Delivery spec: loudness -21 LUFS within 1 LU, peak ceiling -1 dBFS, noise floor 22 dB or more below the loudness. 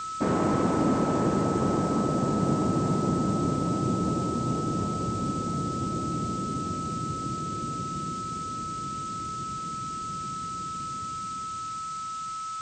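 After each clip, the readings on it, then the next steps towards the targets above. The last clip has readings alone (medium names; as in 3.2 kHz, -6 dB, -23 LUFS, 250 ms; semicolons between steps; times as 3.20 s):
steady tone 1.3 kHz; tone level -32 dBFS; noise floor -35 dBFS; noise floor target -51 dBFS; loudness -29.0 LUFS; peak level -13.5 dBFS; loudness target -21.0 LUFS
-> band-stop 1.3 kHz, Q 30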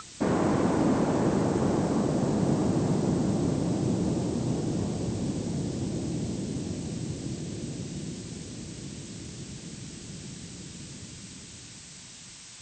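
steady tone not found; noise floor -46 dBFS; noise floor target -51 dBFS
-> noise print and reduce 6 dB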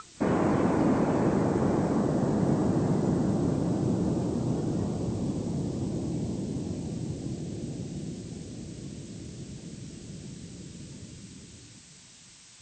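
noise floor -52 dBFS; loudness -28.5 LUFS; peak level -14.5 dBFS; loudness target -21.0 LUFS
-> trim +7.5 dB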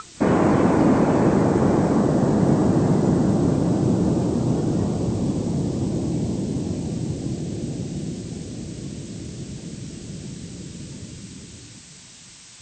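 loudness -21.0 LUFS; peak level -7.0 dBFS; noise floor -45 dBFS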